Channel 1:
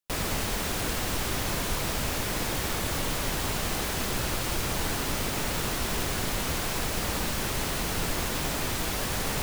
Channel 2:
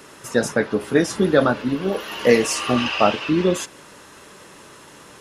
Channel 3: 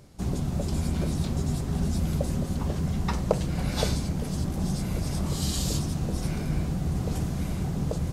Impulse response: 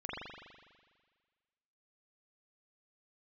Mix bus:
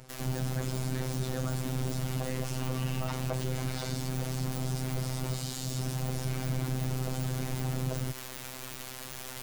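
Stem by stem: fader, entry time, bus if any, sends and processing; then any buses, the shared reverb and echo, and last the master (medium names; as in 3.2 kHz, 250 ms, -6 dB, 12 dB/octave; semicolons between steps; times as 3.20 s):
-10.0 dB, 0.00 s, no send, integer overflow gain 23 dB
-16.5 dB, 0.00 s, no send, none
+3.0 dB, 0.00 s, no send, comb filter that takes the minimum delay 6.4 ms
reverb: none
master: robot voice 129 Hz; peak limiter -16 dBFS, peak gain reduction 11.5 dB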